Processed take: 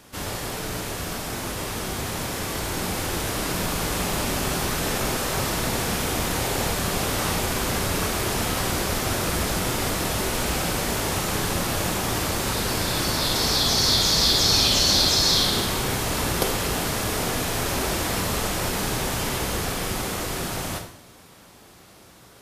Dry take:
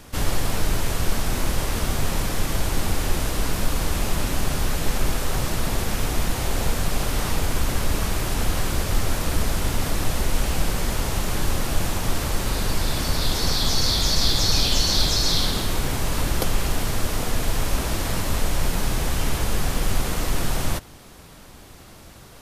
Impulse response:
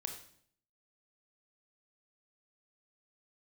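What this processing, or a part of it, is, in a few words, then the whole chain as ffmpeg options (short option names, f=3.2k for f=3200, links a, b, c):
far laptop microphone: -filter_complex "[1:a]atrim=start_sample=2205[a];[0:a][a]afir=irnorm=-1:irlink=0,highpass=f=170:p=1,dynaudnorm=f=280:g=21:m=5.5dB,volume=-1dB"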